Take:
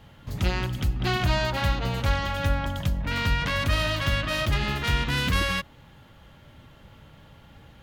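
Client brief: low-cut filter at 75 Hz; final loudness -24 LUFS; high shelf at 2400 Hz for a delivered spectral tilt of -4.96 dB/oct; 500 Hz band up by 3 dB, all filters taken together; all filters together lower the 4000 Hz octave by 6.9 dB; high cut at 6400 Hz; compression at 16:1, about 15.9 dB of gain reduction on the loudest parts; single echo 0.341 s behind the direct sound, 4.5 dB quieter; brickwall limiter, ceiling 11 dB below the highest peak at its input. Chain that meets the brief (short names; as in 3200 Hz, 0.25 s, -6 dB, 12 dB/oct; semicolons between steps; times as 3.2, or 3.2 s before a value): HPF 75 Hz; LPF 6400 Hz; bell 500 Hz +4 dB; high shelf 2400 Hz -3 dB; bell 4000 Hz -6.5 dB; compressor 16:1, threshold -37 dBFS; limiter -39 dBFS; echo 0.341 s -4.5 dB; gain +23 dB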